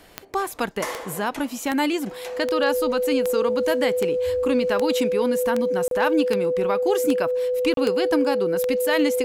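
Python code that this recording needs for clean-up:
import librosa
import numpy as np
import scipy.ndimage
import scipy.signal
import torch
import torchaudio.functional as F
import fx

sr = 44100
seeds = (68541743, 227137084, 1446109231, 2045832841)

y = fx.fix_declip(x, sr, threshold_db=-11.0)
y = fx.fix_declick_ar(y, sr, threshold=10.0)
y = fx.notch(y, sr, hz=500.0, q=30.0)
y = fx.fix_interpolate(y, sr, at_s=(5.88, 7.74), length_ms=32.0)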